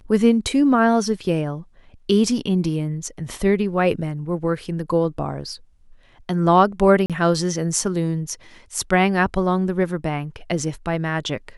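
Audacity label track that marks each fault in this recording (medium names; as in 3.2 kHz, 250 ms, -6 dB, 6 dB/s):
7.060000	7.100000	dropout 37 ms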